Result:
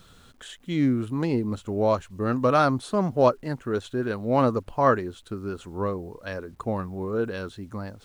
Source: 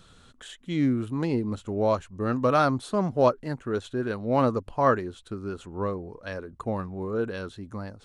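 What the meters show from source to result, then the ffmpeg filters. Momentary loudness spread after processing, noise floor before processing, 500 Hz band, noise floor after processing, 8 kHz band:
14 LU, -56 dBFS, +1.5 dB, -54 dBFS, n/a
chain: -af "acrusher=bits=10:mix=0:aa=0.000001,volume=1.5dB"

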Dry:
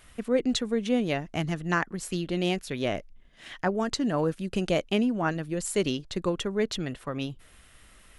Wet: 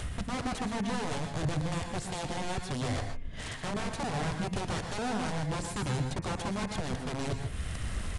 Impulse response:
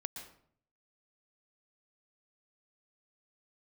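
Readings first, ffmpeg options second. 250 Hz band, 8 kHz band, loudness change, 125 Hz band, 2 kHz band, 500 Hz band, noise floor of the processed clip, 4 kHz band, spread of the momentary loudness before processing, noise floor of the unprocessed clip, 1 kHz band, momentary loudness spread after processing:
-7.0 dB, -2.5 dB, -5.5 dB, +1.0 dB, -4.5 dB, -9.0 dB, -40 dBFS, -5.0 dB, 8 LU, -55 dBFS, -1.0 dB, 4 LU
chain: -filter_complex "[0:a]asplit=2[a][b];[b]acompressor=mode=upward:threshold=-27dB:ratio=2.5,volume=2dB[c];[a][c]amix=inputs=2:normalize=0,asoftclip=type=tanh:threshold=-16.5dB,areverse,acompressor=threshold=-31dB:ratio=5,areverse,aeval=exprs='(mod(28.2*val(0)+1,2)-1)/28.2':c=same,tiltshelf=f=970:g=3,aresample=22050,aresample=44100,equalizer=f=88:w=0.79:g=12,bandreject=f=87.94:t=h:w=4,bandreject=f=175.88:t=h:w=4,bandreject=f=263.82:t=h:w=4,bandreject=f=351.76:t=h:w=4,bandreject=f=439.7:t=h:w=4,bandreject=f=527.64:t=h:w=4,bandreject=f=615.58:t=h:w=4,bandreject=f=703.52:t=h:w=4,bandreject=f=791.46:t=h:w=4,bandreject=f=879.4:t=h:w=4,bandreject=f=967.34:t=h:w=4,bandreject=f=1.05528k:t=h:w=4,bandreject=f=1.14322k:t=h:w=4,bandreject=f=1.23116k:t=h:w=4,bandreject=f=1.3191k:t=h:w=4,bandreject=f=1.40704k:t=h:w=4,bandreject=f=1.49498k:t=h:w=4,bandreject=f=1.58292k:t=h:w=4,bandreject=f=1.67086k:t=h:w=4,bandreject=f=1.7588k:t=h:w=4,bandreject=f=1.84674k:t=h:w=4,bandreject=f=1.93468k:t=h:w=4,bandreject=f=2.02262k:t=h:w=4,bandreject=f=2.11056k:t=h:w=4,bandreject=f=2.1985k:t=h:w=4,bandreject=f=2.28644k:t=h:w=4,bandreject=f=2.37438k:t=h:w=4,bandreject=f=2.46232k:t=h:w=4,bandreject=f=2.55026k:t=h:w=4,bandreject=f=2.6382k:t=h:w=4,bandreject=f=2.72614k:t=h:w=4,bandreject=f=2.81408k:t=h:w=4[d];[1:a]atrim=start_sample=2205,afade=t=out:st=0.21:d=0.01,atrim=end_sample=9702[e];[d][e]afir=irnorm=-1:irlink=0"

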